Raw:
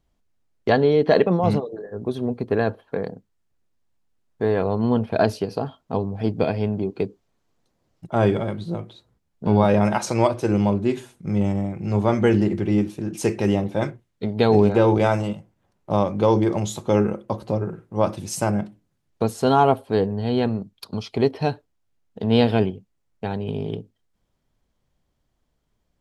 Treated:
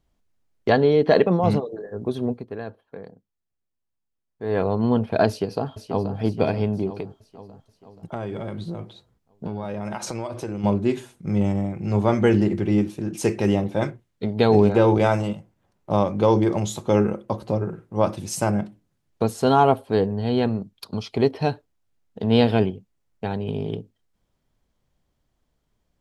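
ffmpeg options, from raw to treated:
ffmpeg -i in.wav -filter_complex "[0:a]asplit=2[link_01][link_02];[link_02]afade=type=in:start_time=5.28:duration=0.01,afade=type=out:start_time=6.16:duration=0.01,aecho=0:1:480|960|1440|1920|2400|2880|3360:0.375837|0.206711|0.113691|0.0625299|0.0343915|0.0189153|0.0104034[link_03];[link_01][link_03]amix=inputs=2:normalize=0,asplit=3[link_04][link_05][link_06];[link_04]afade=type=out:start_time=6.98:duration=0.02[link_07];[link_05]acompressor=threshold=-26dB:ratio=6:attack=3.2:release=140:knee=1:detection=peak,afade=type=in:start_time=6.98:duration=0.02,afade=type=out:start_time=10.63:duration=0.02[link_08];[link_06]afade=type=in:start_time=10.63:duration=0.02[link_09];[link_07][link_08][link_09]amix=inputs=3:normalize=0,asplit=3[link_10][link_11][link_12];[link_10]atrim=end=2.5,asetpts=PTS-STARTPTS,afade=type=out:start_time=2.31:duration=0.19:curve=qua:silence=0.251189[link_13];[link_11]atrim=start=2.5:end=4.37,asetpts=PTS-STARTPTS,volume=-12dB[link_14];[link_12]atrim=start=4.37,asetpts=PTS-STARTPTS,afade=type=in:duration=0.19:curve=qua:silence=0.251189[link_15];[link_13][link_14][link_15]concat=n=3:v=0:a=1" out.wav

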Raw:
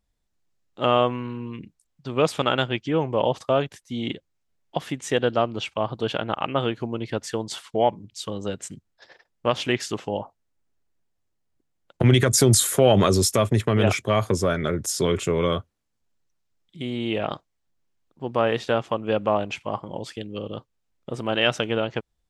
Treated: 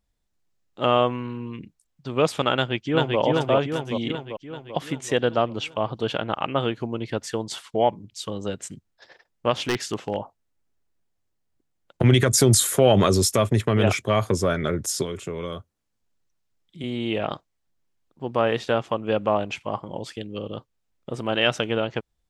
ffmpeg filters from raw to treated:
ffmpeg -i in.wav -filter_complex "[0:a]asplit=2[link_01][link_02];[link_02]afade=type=in:start_time=2.55:duration=0.01,afade=type=out:start_time=3.19:duration=0.01,aecho=0:1:390|780|1170|1560|1950|2340|2730|3120|3510:0.841395|0.504837|0.302902|0.181741|0.109045|0.0654269|0.0392561|0.0235537|0.0141322[link_03];[link_01][link_03]amix=inputs=2:normalize=0,asplit=3[link_04][link_05][link_06];[link_04]afade=type=out:start_time=9.65:duration=0.02[link_07];[link_05]aeval=exprs='0.168*(abs(mod(val(0)/0.168+3,4)-2)-1)':channel_layout=same,afade=type=in:start_time=9.65:duration=0.02,afade=type=out:start_time=10.15:duration=0.02[link_08];[link_06]afade=type=in:start_time=10.15:duration=0.02[link_09];[link_07][link_08][link_09]amix=inputs=3:normalize=0,asettb=1/sr,asplit=3[link_10][link_11][link_12];[link_10]atrim=end=15.024[link_13];[link_11]atrim=start=15.02:end=16.84,asetpts=PTS-STARTPTS,afade=type=in:duration=0.004:curve=qsin,afade=type=out:start_time=1.816:duration=0.004:curve=qsin,acrossover=split=87|1500|5100[link_14][link_15][link_16][link_17];[link_14]acompressor=threshold=-50dB:ratio=3[link_18];[link_15]acompressor=threshold=-31dB:ratio=3[link_19];[link_16]acompressor=threshold=-47dB:ratio=3[link_20];[link_17]acompressor=threshold=-48dB:ratio=3[link_21];[link_18][link_19][link_20][link_21]amix=inputs=4:normalize=0[link_22];[link_12]atrim=start=16.836[link_23];[link_13][link_22]acrossfade=duration=0.004:curve1=hsin:curve2=qsin[link_24];[link_24][link_23]acrossfade=duration=0.004:curve1=qsin:curve2=hsin" out.wav

